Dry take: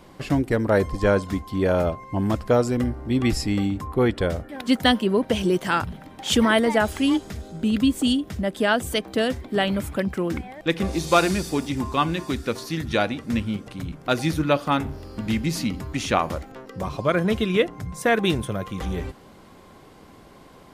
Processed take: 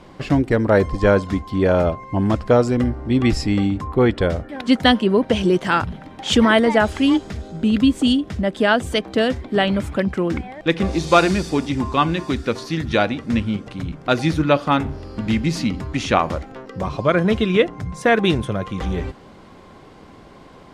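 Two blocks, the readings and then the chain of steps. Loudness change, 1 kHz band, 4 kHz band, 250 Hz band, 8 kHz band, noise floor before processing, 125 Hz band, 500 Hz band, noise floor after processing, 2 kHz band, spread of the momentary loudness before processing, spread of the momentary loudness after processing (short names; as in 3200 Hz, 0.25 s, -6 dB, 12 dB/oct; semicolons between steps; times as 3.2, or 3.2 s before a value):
+4.0 dB, +4.0 dB, +3.0 dB, +4.5 dB, -1.5 dB, -48 dBFS, +4.5 dB, +4.5 dB, -44 dBFS, +4.0 dB, 10 LU, 10 LU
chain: air absorption 64 m; gain +4.5 dB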